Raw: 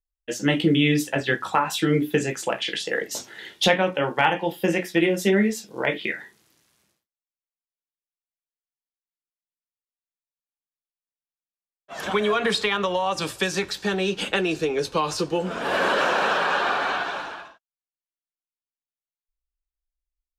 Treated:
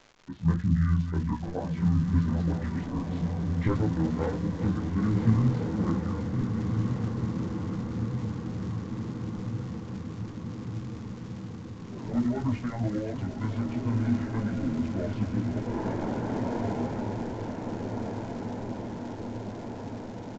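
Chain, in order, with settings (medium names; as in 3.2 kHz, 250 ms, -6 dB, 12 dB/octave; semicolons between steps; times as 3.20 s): backward echo that repeats 493 ms, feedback 75%, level -9 dB; tilt EQ -4 dB/octave; feedback comb 410 Hz, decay 0.81 s, mix 60%; de-hum 68.27 Hz, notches 3; chorus voices 6, 0.35 Hz, delay 18 ms, depth 3.8 ms; pitch shift -9.5 st; crackle 340 per s -35 dBFS; on a send: echo that smears into a reverb 1580 ms, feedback 70%, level -5 dB; on the sum: resampled via 16 kHz; tape noise reduction on one side only decoder only; trim -1 dB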